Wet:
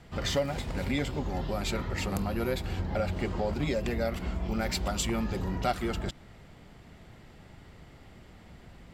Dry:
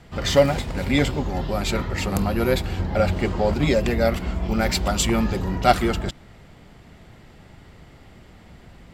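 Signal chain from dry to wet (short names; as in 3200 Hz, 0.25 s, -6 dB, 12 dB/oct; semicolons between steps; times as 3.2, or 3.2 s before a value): compressor 2.5:1, threshold -24 dBFS, peak gain reduction 9.5 dB; gain -4.5 dB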